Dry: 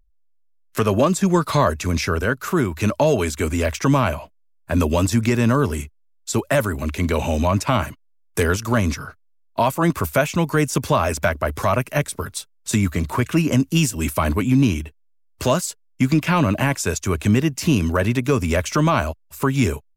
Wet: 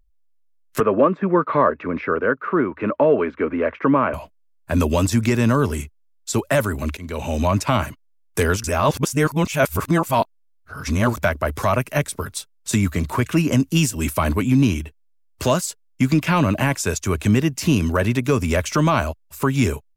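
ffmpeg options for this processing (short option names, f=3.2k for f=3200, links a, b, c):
-filter_complex "[0:a]asettb=1/sr,asplit=3[a][b][c];[a]atrim=end=0.804[d];[b]atrim=start=0.8:end=4.14,asetpts=PTS-STARTPTS,afade=t=in:d=0.004:c=qsin,afade=t=out:st=3.336:d=0.004:c=qsin,highpass=230,equalizer=f=290:t=q:w=4:g=4,equalizer=f=490:t=q:w=4:g=6,equalizer=f=750:t=q:w=4:g=-4,equalizer=f=1.2k:t=q:w=4:g=4,lowpass=f=2.1k:w=0.5412,lowpass=f=2.1k:w=1.3066[e];[c]atrim=start=4.136[f];[d][e]acrossfade=d=0.004:c1=hsin:c2=qsin[g];[g][f]acrossfade=d=0.004:c1=qsin:c2=hsin,asplit=4[h][i][j][k];[h]atrim=end=6.97,asetpts=PTS-STARTPTS,afade=t=out:st=6.966:d=0.004:c=hsin:silence=0.112202[l];[i]atrim=start=6.97:end=8.642,asetpts=PTS-STARTPTS,afade=t=in:d=0.49:silence=0.112202[m];[j]atrim=start=8.638:end=11.172,asetpts=PTS-STARTPTS,areverse[n];[k]atrim=start=11.168[o];[l][m]concat=n=2:v=0:a=1[p];[p][n]acrossfade=d=0.004:c1=hsin:c2=hsin[q];[q][o]acrossfade=d=0.004:c1=hsin:c2=hsin"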